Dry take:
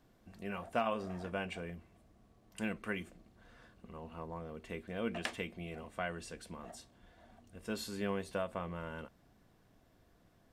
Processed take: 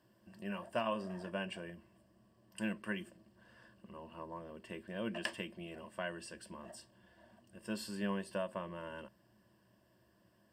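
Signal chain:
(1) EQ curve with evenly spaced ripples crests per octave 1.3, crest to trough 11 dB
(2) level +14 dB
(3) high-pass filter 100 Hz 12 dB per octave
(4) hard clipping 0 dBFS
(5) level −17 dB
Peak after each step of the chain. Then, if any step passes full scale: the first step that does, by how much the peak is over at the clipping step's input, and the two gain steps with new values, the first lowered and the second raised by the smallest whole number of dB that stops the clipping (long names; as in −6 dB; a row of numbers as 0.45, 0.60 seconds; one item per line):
−17.0, −3.0, −3.5, −3.5, −20.5 dBFS
no step passes full scale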